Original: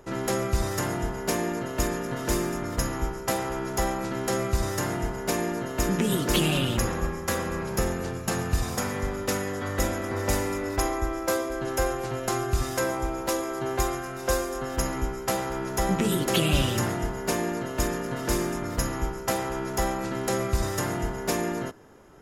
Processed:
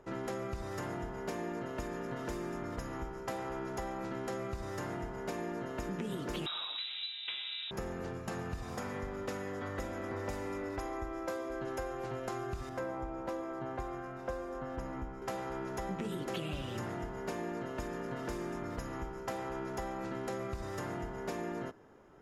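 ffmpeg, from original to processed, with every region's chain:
ffmpeg -i in.wav -filter_complex "[0:a]asettb=1/sr,asplit=3[link_01][link_02][link_03];[link_01]atrim=end=6.464[link_04];[link_02]atrim=start=6.46:end=7.71,asetpts=PTS-STARTPTS,afade=type=in:duration=0.004:curve=qsin,afade=type=out:start_time=1.246:duration=0.004:curve=qsin,aemphasis=mode=reproduction:type=75fm,lowpass=frequency=3400:width_type=q:width=0.5098,lowpass=frequency=3400:width_type=q:width=0.6013,lowpass=frequency=3400:width_type=q:width=0.9,lowpass=frequency=3400:width_type=q:width=2.563,afreqshift=-4000,acontrast=57[link_05];[link_03]atrim=start=7.706[link_06];[link_04][link_05]acrossfade=duration=0.004:curve1=hsin:curve2=qsin[link_07];[link_07][link_06]acrossfade=duration=0.004:curve1=qsin:curve2=hsin,asettb=1/sr,asplit=3[link_08][link_09][link_10];[link_08]atrim=end=12.694[link_11];[link_09]atrim=start=12.69:end=15.22,asetpts=PTS-STARTPTS,afade=type=in:duration=0.004:curve=qsin,afade=type=out:start_time=2.526:duration=0.004:curve=qsin,highshelf=frequency=2300:gain=-10.5,bandreject=frequency=400:width=9.7[link_12];[link_10]atrim=start=15.216[link_13];[link_11][link_12]acrossfade=duration=0.004:curve1=hsin:curve2=qsin[link_14];[link_14][link_13]acrossfade=duration=0.004:curve1=qsin:curve2=hsin,acompressor=threshold=-28dB:ratio=4,lowpass=frequency=2300:poles=1,lowshelf=frequency=160:gain=-4.5,volume=-5.5dB" out.wav

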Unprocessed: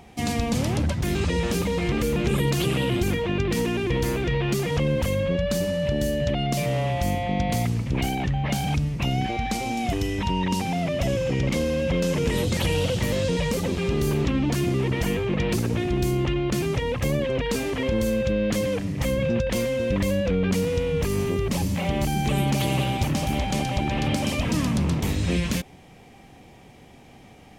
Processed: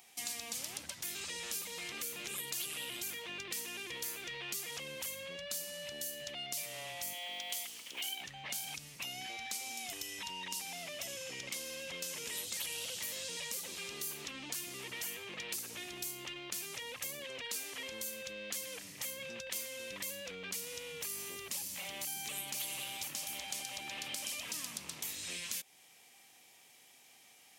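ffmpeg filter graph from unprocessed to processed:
ffmpeg -i in.wav -filter_complex "[0:a]asettb=1/sr,asplit=3[link_01][link_02][link_03];[link_01]atrim=end=7.134[link_04];[link_02]atrim=start=7.13:end=8.21,asetpts=PTS-STARTPTS,afade=type=in:duration=0.004:curve=qsin,afade=type=out:start_time=1.076:duration=0.004:curve=qsin,highpass=330,equalizer=frequency=3100:width=4.9:gain=10.5,aeval=exprs='sgn(val(0))*max(abs(val(0))-0.00224,0)':channel_layout=same[link_05];[link_03]atrim=start=8.206[link_06];[link_04][link_05]acrossfade=duration=0.004:curve1=hsin:curve2=qsin[link_07];[link_07][link_06]acrossfade=duration=0.004:curve1=qsin:curve2=hsin,aderivative,acompressor=threshold=-43dB:ratio=2,volume=2dB" out.wav

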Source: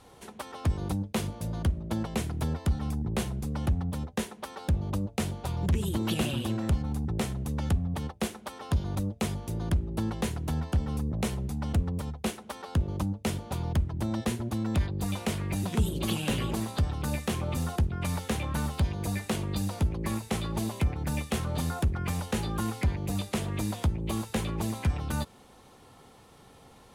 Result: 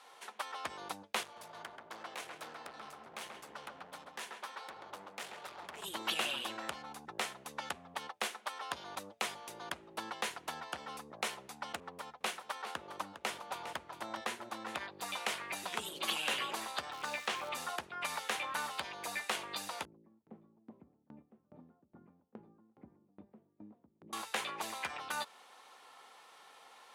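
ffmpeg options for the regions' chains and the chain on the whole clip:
ffmpeg -i in.wav -filter_complex "[0:a]asettb=1/sr,asplit=3[link_01][link_02][link_03];[link_01]atrim=end=1.234[link_04];[link_02]atrim=start=1.23:end=5.84,asetpts=PTS-STARTPTS,afade=type=in:duration=0.004:curve=qsin,afade=type=out:start_time=4.606:duration=0.004:curve=qsin,flanger=delay=0.1:depth=8.9:regen=40:speed=1.4:shape=triangular,asoftclip=type=hard:threshold=-35.5dB,asplit=2[link_05][link_06];[link_06]adelay=134,lowpass=frequency=1900:poles=1,volume=-3dB,asplit=2[link_07][link_08];[link_08]adelay=134,lowpass=frequency=1900:poles=1,volume=0.53,asplit=2[link_09][link_10];[link_10]adelay=134,lowpass=frequency=1900:poles=1,volume=0.53,asplit=2[link_11][link_12];[link_12]adelay=134,lowpass=frequency=1900:poles=1,volume=0.53,asplit=2[link_13][link_14];[link_14]adelay=134,lowpass=frequency=1900:poles=1,volume=0.53,asplit=2[link_15][link_16];[link_16]adelay=134,lowpass=frequency=1900:poles=1,volume=0.53,asplit=2[link_17][link_18];[link_18]adelay=134,lowpass=frequency=1900:poles=1,volume=0.53[link_19];[link_05][link_07][link_09][link_11][link_13][link_15][link_17][link_19]amix=inputs=8:normalize=0,atrim=end_sample=203301[link_20];[link_03]atrim=start=5.836[link_21];[link_04][link_20]acrossfade=duration=0.004:curve1=hsin:curve2=qsin[link_22];[link_22][link_21]acrossfade=duration=0.004:curve1=qsin:curve2=hsin,asettb=1/sr,asplit=3[link_23][link_24][link_25];[link_23]atrim=end=11.804[link_26];[link_24]atrim=start=11.8:end=14.9,asetpts=PTS-STARTPTS,afade=type=in:duration=0.004:curve=qsin,afade=type=out:start_time=3.096:duration=0.004:curve=qsin,aecho=1:1:406:0.282,atrim=end_sample=136710,adynamicequalizer=threshold=0.00251:dfrequency=2200:dqfactor=0.7:tfrequency=2200:tqfactor=0.7:attack=5:release=100:ratio=0.375:range=2:mode=cutabove:tftype=highshelf[link_27];[link_25]atrim=start=14.896[link_28];[link_26][link_27]acrossfade=duration=0.004:curve1=hsin:curve2=qsin[link_29];[link_29][link_28]acrossfade=duration=0.004:curve1=qsin:curve2=hsin,asettb=1/sr,asplit=3[link_30][link_31][link_32];[link_30]atrim=end=16.924[link_33];[link_31]atrim=start=16.92:end=17.49,asetpts=PTS-STARTPTS,afade=type=in:duration=0.004:curve=qsin,afade=type=out:start_time=0.566:duration=0.004:curve=qsin,lowpass=6900,acrusher=bits=9:dc=4:mix=0:aa=0.000001[link_34];[link_32]atrim=start=17.486[link_35];[link_33][link_34]acrossfade=duration=0.004:curve1=hsin:curve2=qsin[link_36];[link_36][link_35]acrossfade=duration=0.004:curve1=qsin:curve2=hsin,asettb=1/sr,asplit=3[link_37][link_38][link_39];[link_37]atrim=end=19.854[link_40];[link_38]atrim=start=19.85:end=24.13,asetpts=PTS-STARTPTS,afade=type=in:duration=0.004:curve=qsin,afade=type=out:start_time=4.276:duration=0.004:curve=qsin,lowpass=frequency=240:width_type=q:width=2,aecho=1:1:370:0.316,atrim=end_sample=188748,aeval=exprs='val(0)*pow(10,-25*if(lt(mod(2.4*n/s,1),2*abs(2.4)/1000),1-mod(2.4*n/s,1)/(2*abs(2.4)/1000),(mod(2.4*n/s,1)-2*abs(2.4)/1000)/(1-2*abs(2.4)/1000))/20)':channel_layout=same[link_41];[link_39]atrim=start=24.126[link_42];[link_40][link_41]acrossfade=duration=0.004:curve1=hsin:curve2=qsin[link_43];[link_43][link_42]acrossfade=duration=0.004:curve1=qsin:curve2=hsin,highpass=1000,aemphasis=mode=reproduction:type=cd,volume=3.5dB" out.wav

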